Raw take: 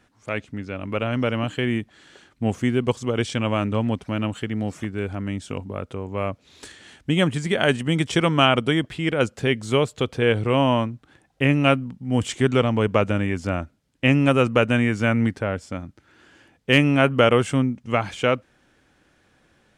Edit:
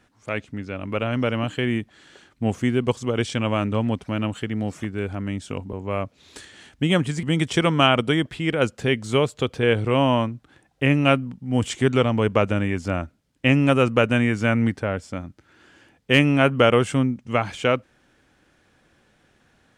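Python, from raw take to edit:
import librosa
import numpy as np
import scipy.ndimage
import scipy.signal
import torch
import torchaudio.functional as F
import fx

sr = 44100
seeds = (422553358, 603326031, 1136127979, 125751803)

y = fx.edit(x, sr, fx.cut(start_s=5.73, length_s=0.27),
    fx.cut(start_s=7.5, length_s=0.32), tone=tone)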